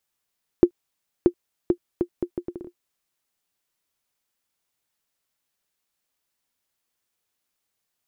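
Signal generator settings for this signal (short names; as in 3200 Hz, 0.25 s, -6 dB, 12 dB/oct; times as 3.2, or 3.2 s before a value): bouncing ball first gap 0.63 s, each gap 0.7, 351 Hz, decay 78 ms -2.5 dBFS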